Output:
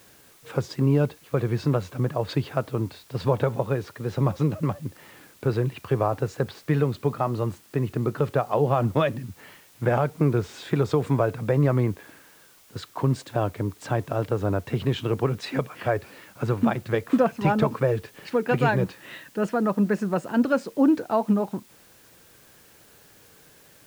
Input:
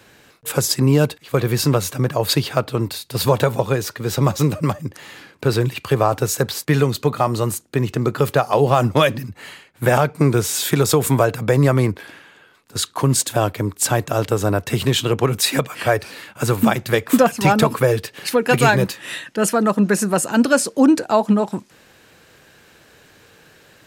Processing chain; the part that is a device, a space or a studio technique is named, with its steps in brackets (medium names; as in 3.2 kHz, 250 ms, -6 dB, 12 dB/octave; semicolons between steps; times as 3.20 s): cassette deck with a dirty head (tape spacing loss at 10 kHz 29 dB; wow and flutter; white noise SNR 30 dB); trim -5 dB